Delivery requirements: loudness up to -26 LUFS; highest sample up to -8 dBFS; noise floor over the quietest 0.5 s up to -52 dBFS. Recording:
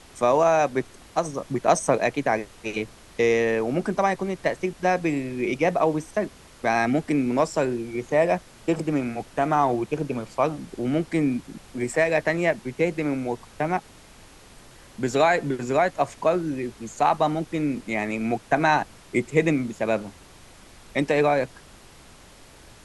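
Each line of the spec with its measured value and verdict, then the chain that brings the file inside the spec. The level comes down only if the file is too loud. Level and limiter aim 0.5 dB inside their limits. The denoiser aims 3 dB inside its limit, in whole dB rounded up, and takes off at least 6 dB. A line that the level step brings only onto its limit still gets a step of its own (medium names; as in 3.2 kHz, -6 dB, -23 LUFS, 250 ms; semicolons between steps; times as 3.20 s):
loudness -24.5 LUFS: fail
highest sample -6.0 dBFS: fail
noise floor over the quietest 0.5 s -49 dBFS: fail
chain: noise reduction 6 dB, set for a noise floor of -49 dBFS; trim -2 dB; peak limiter -8.5 dBFS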